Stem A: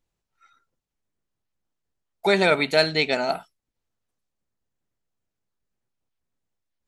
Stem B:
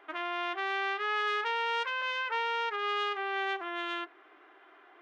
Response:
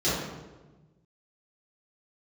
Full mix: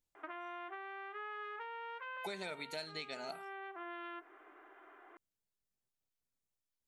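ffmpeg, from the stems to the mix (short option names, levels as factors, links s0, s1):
-filter_complex "[0:a]highshelf=f=4200:g=10.5,volume=0.266[s0];[1:a]lowpass=2000,acompressor=threshold=0.0126:ratio=6,adelay=150,volume=0.891[s1];[s0][s1]amix=inputs=2:normalize=0,acompressor=threshold=0.00891:ratio=6"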